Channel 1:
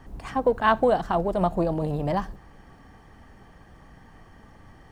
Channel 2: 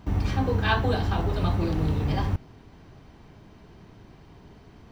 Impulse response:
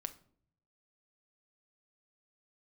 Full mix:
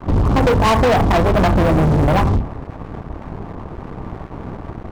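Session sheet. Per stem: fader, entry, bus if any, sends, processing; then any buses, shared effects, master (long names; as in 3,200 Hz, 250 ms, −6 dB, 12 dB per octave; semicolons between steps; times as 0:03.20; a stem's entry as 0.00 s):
−2.5 dB, 0.00 s, send −13.5 dB, no processing
+1.0 dB, 17 ms, no send, sub-octave generator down 1 octave, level −3 dB; brickwall limiter −19.5 dBFS, peak gain reduction 10.5 dB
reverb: on, RT60 0.55 s, pre-delay 6 ms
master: Chebyshev low-pass filter 1,200 Hz, order 8; leveller curve on the samples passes 5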